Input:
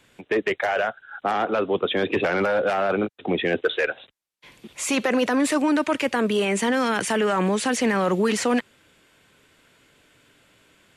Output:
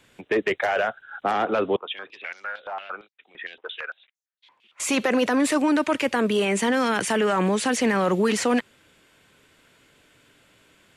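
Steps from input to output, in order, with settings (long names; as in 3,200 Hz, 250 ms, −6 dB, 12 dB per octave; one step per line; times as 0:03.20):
0:01.76–0:04.80: band-pass on a step sequencer 8.8 Hz 960–6,400 Hz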